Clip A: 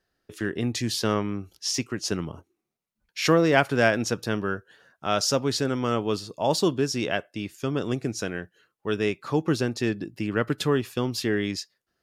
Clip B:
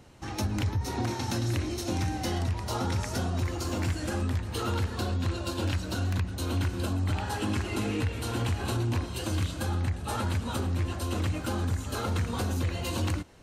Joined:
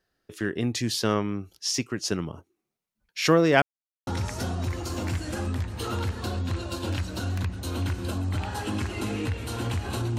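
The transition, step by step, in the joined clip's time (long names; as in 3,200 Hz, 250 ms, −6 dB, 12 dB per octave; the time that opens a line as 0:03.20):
clip A
0:03.62–0:04.07: silence
0:04.07: continue with clip B from 0:02.82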